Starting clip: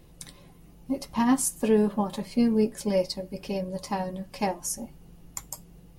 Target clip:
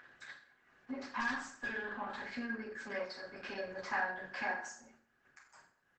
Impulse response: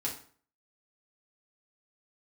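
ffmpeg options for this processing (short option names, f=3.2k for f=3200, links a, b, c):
-filter_complex "[0:a]asettb=1/sr,asplit=3[a][b][c];[a]atrim=end=2.744[d];[b]atrim=start=2.74:end=3.41,asetpts=PTS-STARTPTS,afade=t=in:d=0.004:c=qsin,afade=t=out:st=0.666:d=0.004:c=qsin,aeval=exprs='if(lt(val(0),0),0.708*val(0),val(0))':c=same[e];[c]atrim=start=3.406[f];[d][e]acrossfade=d=0.004:c1=hsin:c2=qsin[g];[g][f]acrossfade=d=0.004:c1=qsin:c2=hsin,agate=range=-24dB:threshold=-44dB:ratio=16:detection=peak,acompressor=mode=upward:threshold=-30dB:ratio=2.5,alimiter=limit=-20.5dB:level=0:latency=1:release=305,asplit=3[h][i][j];[h]afade=t=out:st=4.71:d=0.02[k];[i]acompressor=threshold=-46dB:ratio=5,afade=t=in:st=4.71:d=0.02,afade=t=out:st=5.53:d=0.02[l];[j]afade=t=in:st=5.53:d=0.02[m];[k][l][m]amix=inputs=3:normalize=0,bandpass=f=1.6k:t=q:w=11:csg=0,asplit=3[n][o][p];[n]afade=t=out:st=1.19:d=0.02[q];[o]aeval=exprs='(tanh(355*val(0)+0.3)-tanh(0.3))/355':c=same,afade=t=in:st=1.19:d=0.02,afade=t=out:st=2.22:d=0.02[r];[p]afade=t=in:st=2.22:d=0.02[s];[q][r][s]amix=inputs=3:normalize=0,aecho=1:1:79:0.178[t];[1:a]atrim=start_sample=2205,afade=t=out:st=0.39:d=0.01,atrim=end_sample=17640,asetrate=38367,aresample=44100[u];[t][u]afir=irnorm=-1:irlink=0,volume=16dB" -ar 48000 -c:a libopus -b:a 12k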